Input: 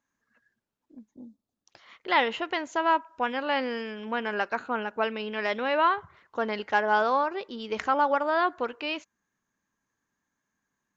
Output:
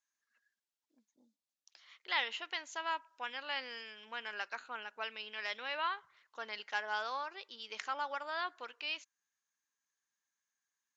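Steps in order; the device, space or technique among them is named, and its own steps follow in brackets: piezo pickup straight into a mixer (low-pass 5.9 kHz 12 dB/octave; differentiator); trim +3 dB

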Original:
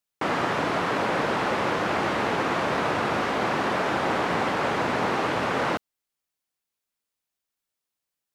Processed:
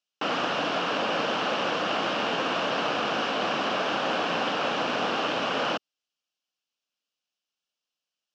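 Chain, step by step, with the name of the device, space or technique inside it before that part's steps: full-range speaker at full volume (loudspeaker Doppler distortion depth 0.25 ms; cabinet simulation 230–6400 Hz, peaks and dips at 380 Hz -7 dB, 920 Hz -5 dB, 2 kHz -9 dB, 2.9 kHz +9 dB, 5.4 kHz +4 dB)

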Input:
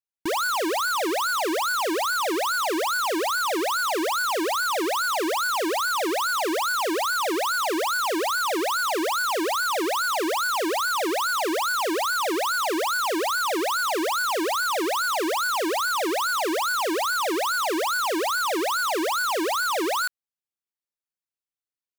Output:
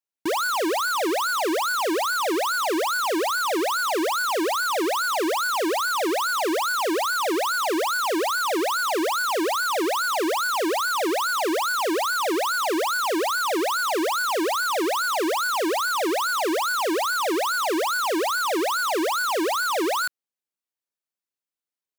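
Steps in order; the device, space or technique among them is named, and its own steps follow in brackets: filter by subtraction (in parallel: low-pass 290 Hz 12 dB/octave + polarity flip)

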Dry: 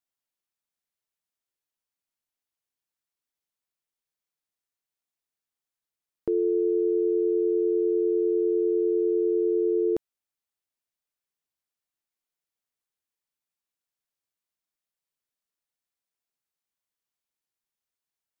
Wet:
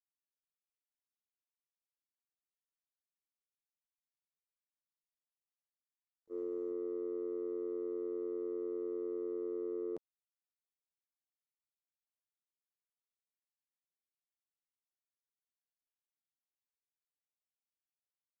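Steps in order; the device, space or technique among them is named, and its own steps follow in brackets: video call (high-pass 140 Hz 12 dB/octave; level rider gain up to 4 dB; gate -15 dBFS, range -60 dB; trim +11 dB; Opus 24 kbps 48 kHz)

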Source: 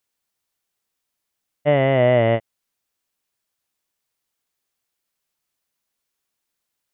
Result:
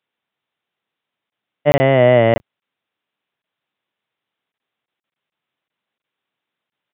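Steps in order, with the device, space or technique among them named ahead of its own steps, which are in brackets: call with lost packets (high-pass 110 Hz 24 dB/octave; resampled via 8 kHz; lost packets of 20 ms); trim +4.5 dB

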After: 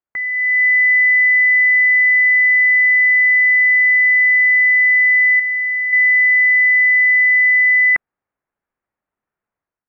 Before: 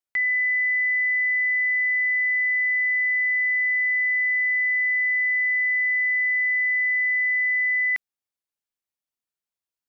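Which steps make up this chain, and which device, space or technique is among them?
5.39–5.93 s: dynamic bell 2 kHz, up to -7 dB, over -37 dBFS, Q 7.4; action camera in a waterproof case (low-pass 1.8 kHz 24 dB/octave; level rider gain up to 11 dB; trim +4.5 dB; AAC 64 kbps 44.1 kHz)

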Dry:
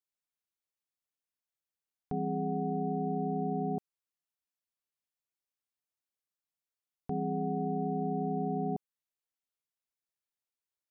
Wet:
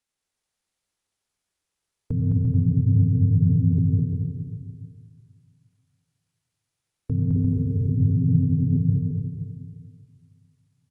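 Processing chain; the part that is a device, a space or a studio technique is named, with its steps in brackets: dynamic bell 120 Hz, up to -4 dB, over -56 dBFS, Q 3.2; 7.36–7.90 s: comb 1.9 ms, depth 96%; monster voice (pitch shift -8.5 st; formant shift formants -2.5 st; bass shelf 130 Hz +6 dB; reverberation RT60 1.9 s, pre-delay 86 ms, DRR 4 dB); bouncing-ball echo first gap 210 ms, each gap 0.65×, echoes 5; trim +7.5 dB

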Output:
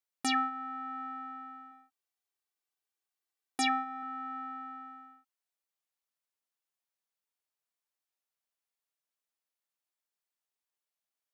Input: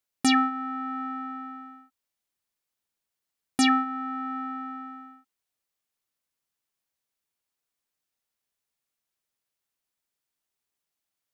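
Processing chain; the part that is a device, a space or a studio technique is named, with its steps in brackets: 1.71–4.03 s: comb 2.6 ms, depth 49%; filter by subtraction (in parallel: low-pass 700 Hz 12 dB/octave + polarity flip); on the sum: trim -7.5 dB

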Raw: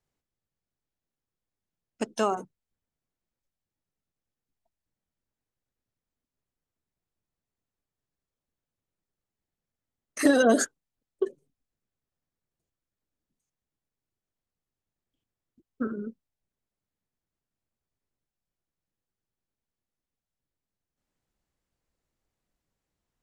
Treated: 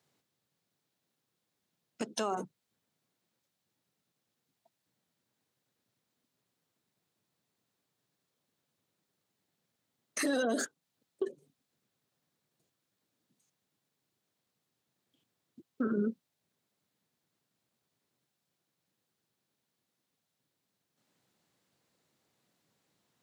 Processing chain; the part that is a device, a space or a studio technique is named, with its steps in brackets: broadcast voice chain (high-pass 120 Hz 24 dB/octave; de-esser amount 55%; compression 4:1, threshold -34 dBFS, peak gain reduction 15.5 dB; peaking EQ 3.9 kHz +4.5 dB 0.58 oct; peak limiter -31.5 dBFS, peak gain reduction 9.5 dB); trim +8.5 dB

